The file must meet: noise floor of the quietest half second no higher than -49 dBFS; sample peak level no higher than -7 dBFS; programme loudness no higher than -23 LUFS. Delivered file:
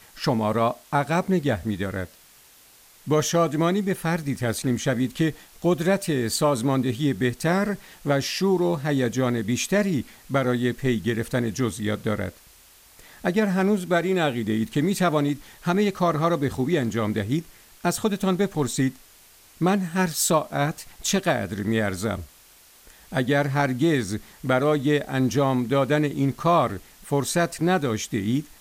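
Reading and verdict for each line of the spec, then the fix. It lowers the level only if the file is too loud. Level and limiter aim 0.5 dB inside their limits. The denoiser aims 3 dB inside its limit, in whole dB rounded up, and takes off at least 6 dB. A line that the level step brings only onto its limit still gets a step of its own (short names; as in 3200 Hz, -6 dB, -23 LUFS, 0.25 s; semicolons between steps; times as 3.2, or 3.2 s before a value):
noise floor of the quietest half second -53 dBFS: OK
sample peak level -9.0 dBFS: OK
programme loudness -24.0 LUFS: OK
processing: none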